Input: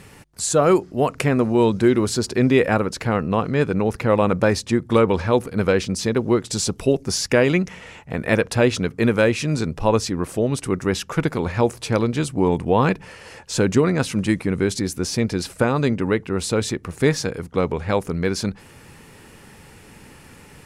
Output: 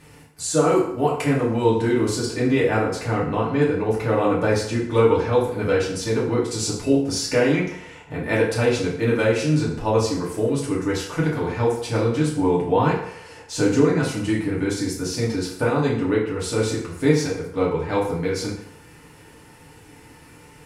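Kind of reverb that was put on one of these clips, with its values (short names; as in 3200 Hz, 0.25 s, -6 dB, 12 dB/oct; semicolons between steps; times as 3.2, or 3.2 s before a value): FDN reverb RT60 0.72 s, low-frequency decay 0.75×, high-frequency decay 0.75×, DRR -6.5 dB; gain -9 dB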